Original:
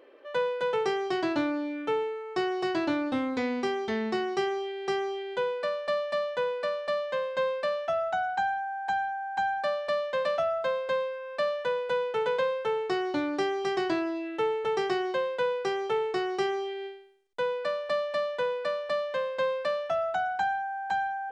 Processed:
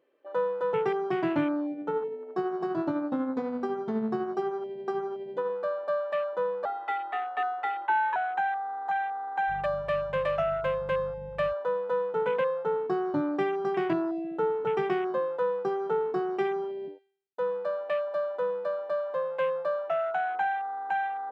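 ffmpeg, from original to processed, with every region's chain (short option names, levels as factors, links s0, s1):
-filter_complex "[0:a]asettb=1/sr,asplit=3[s0][s1][s2];[s0]atrim=end=1.724[s3];[s1]atrim=start=1.72:end=5.5,asetpts=PTS-STARTPTS,afade=t=in:d=0.004:c=qsin,afade=t=out:st=3.776:d=0.004:c=qsin,bandreject=f=50:t=h:w=6,bandreject=f=100:t=h:w=6,bandreject=f=150:t=h:w=6,bandreject=f=200:t=h:w=6,bandreject=f=250:t=h:w=6,bandreject=f=300:t=h:w=6,bandreject=f=350:t=h:w=6,bandreject=f=400:t=h:w=6,bandreject=f=450:t=h:w=6,tremolo=f=12:d=0.37[s4];[s2]atrim=start=5.496[s5];[s3][s4]acrossfade=d=0.004:c1=hsin:c2=qsin[s6];[s6][s5]acrossfade=d=0.004:c1=qsin:c2=hsin,asettb=1/sr,asplit=3[s7][s8][s9];[s7]atrim=end=6.654[s10];[s8]atrim=start=6.65:end=8.16,asetpts=PTS-STARTPTS,afade=t=in:d=0.004:c=qsin,afade=t=out:st=1.506:d=0.004:c=qsin,lowpass=f=3200:p=1,aecho=1:1:4.5:0.51,atrim=end_sample=66591,afreqshift=210[s11];[s9]atrim=start=8.156[s12];[s10][s11]acrossfade=d=0.004:c1=hsin:c2=qsin[s13];[s13][s12]acrossfade=d=0.004:c1=qsin:c2=hsin,asettb=1/sr,asplit=3[s14][s15][s16];[s14]atrim=end=9.484[s17];[s15]atrim=start=9.48:end=11.53,asetpts=PTS-STARTPTS,afade=t=in:d=0.004:c=qsin,afade=t=out:st=2.046:d=0.004:c=qsin,aemphasis=mode=production:type=cd,aeval=exprs='val(0)+0.00501*(sin(2*PI*50*n/s)+sin(2*PI*2*50*n/s)/2+sin(2*PI*3*50*n/s)/3+sin(2*PI*4*50*n/s)/4+sin(2*PI*5*50*n/s)/5)':c=same[s18];[s16]atrim=start=11.526[s19];[s17][s18]acrossfade=d=0.004:c1=hsin:c2=qsin[s20];[s20][s19]acrossfade=d=0.004:c1=qsin:c2=hsin,asettb=1/sr,asplit=3[s21][s22][s23];[s21]atrim=end=16.214[s24];[s22]atrim=start=16.21:end=19.08,asetpts=PTS-STARTPTS,afade=t=in:d=0.004:c=qsin,afade=t=out:st=2.866:d=0.004:c=qsin,highpass=110,equalizer=f=1100:t=o:w=0.42:g=-3.5[s25];[s23]atrim=start=19.076[s26];[s24][s25]acrossfade=d=0.004:c1=hsin:c2=qsin[s27];[s27][s26]acrossfade=d=0.004:c1=qsin:c2=hsin,afwtdn=0.02,equalizer=f=160:w=2.2:g=13"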